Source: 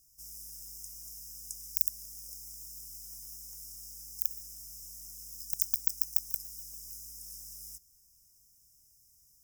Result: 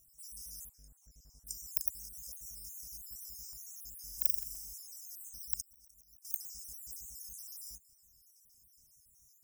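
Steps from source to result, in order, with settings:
time-frequency cells dropped at random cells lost 52%
0:00.69–0:01.47: low-pass filter 1,100 Hz 6 dB per octave
0:04.03–0:04.73: flutter between parallel walls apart 7.3 metres, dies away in 0.67 s
0:05.61–0:06.25: volume swells 507 ms
level +2 dB

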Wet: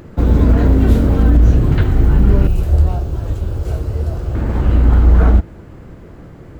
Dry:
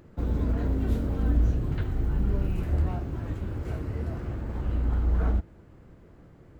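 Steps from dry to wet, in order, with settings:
0:02.47–0:04.35: octave-band graphic EQ 125/250/1,000/2,000 Hz −4/−12/−5/−12 dB
boost into a limiter +16.5 dB
level −1 dB

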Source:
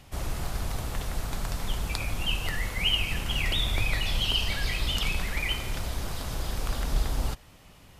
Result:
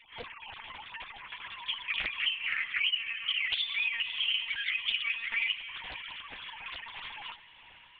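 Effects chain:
three sine waves on the formant tracks
flat-topped bell 980 Hz −9.5 dB
downward compressor 5 to 1, threshold −33 dBFS, peak gain reduction 18 dB
feedback delay with all-pass diffusion 558 ms, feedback 41%, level −15 dB
one-pitch LPC vocoder at 8 kHz 230 Hz
highs frequency-modulated by the lows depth 0.51 ms
level +3.5 dB

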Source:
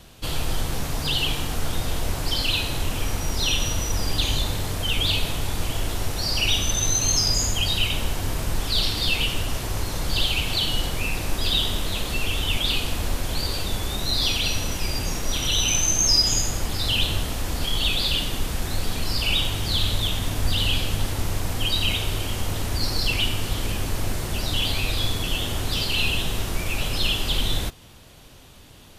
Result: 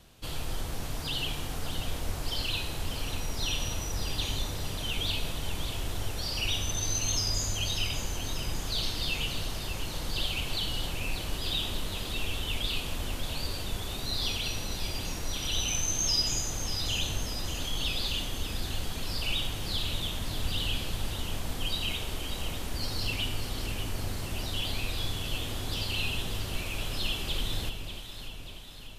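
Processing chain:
delay that swaps between a low-pass and a high-pass 295 ms, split 1,100 Hz, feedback 77%, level −7 dB
level −9 dB

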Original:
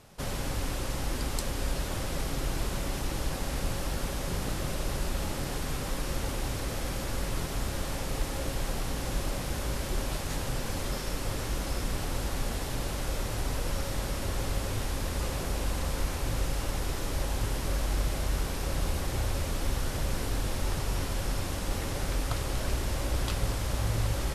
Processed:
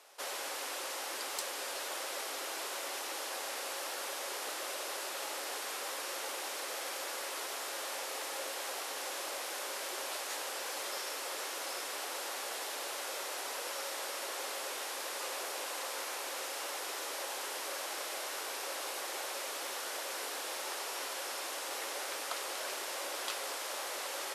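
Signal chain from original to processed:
Bessel high-pass filter 640 Hz, order 8
soft clipping −23 dBFS, distortion −30 dB

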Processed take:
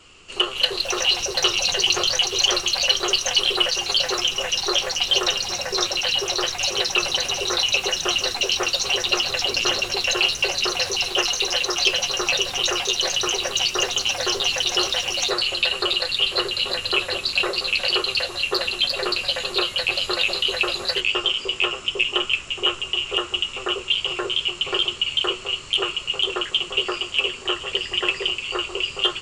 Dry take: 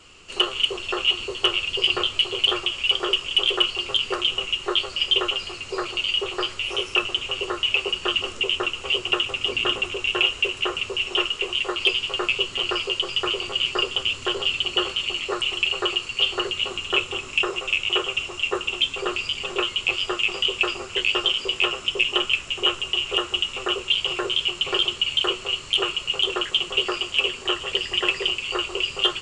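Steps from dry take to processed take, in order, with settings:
delay with pitch and tempo change per echo 352 ms, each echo +6 semitones, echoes 2

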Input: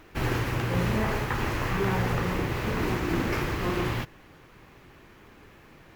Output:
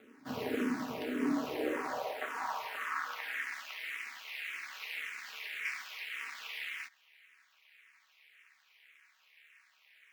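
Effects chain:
time stretch by overlap-add 1.7×, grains 28 ms
ring modulation 110 Hz
high-pass filter sweep 270 Hz → 2,200 Hz, 0:01.20–0:03.60
frequency shifter mixed with the dry sound −1.8 Hz
level −2.5 dB

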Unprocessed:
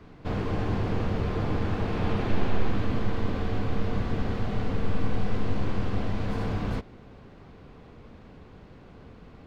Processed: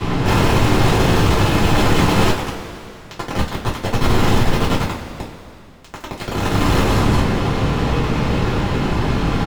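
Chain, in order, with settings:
multi-tap delay 195/373/391/405 ms −9.5/−20/−16.5/−14 dB
fuzz pedal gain 48 dB, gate −54 dBFS
coupled-rooms reverb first 0.26 s, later 2.7 s, from −17 dB, DRR −7 dB
level −8 dB

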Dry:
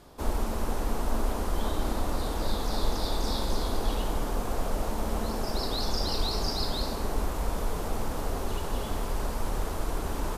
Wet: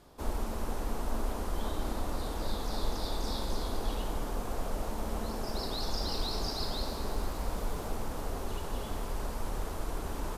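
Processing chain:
0:05.32–0:07.95: feedback echo at a low word length 118 ms, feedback 80%, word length 9 bits, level −13 dB
level −5 dB

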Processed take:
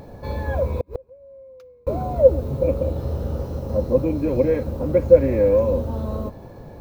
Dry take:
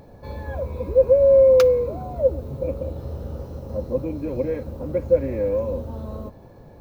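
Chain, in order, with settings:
0:00.63–0:01.87: gate with flip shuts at −18 dBFS, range −37 dB
level +6 dB

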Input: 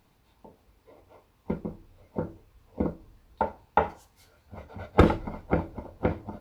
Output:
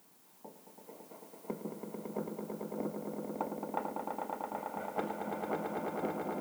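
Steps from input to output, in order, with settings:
adaptive Wiener filter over 9 samples
high-pass filter 190 Hz 24 dB per octave
downward compressor 6 to 1, threshold −36 dBFS, peak gain reduction 20.5 dB
background noise blue −65 dBFS
on a send: echo that builds up and dies away 111 ms, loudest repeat 5, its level −5.5 dB

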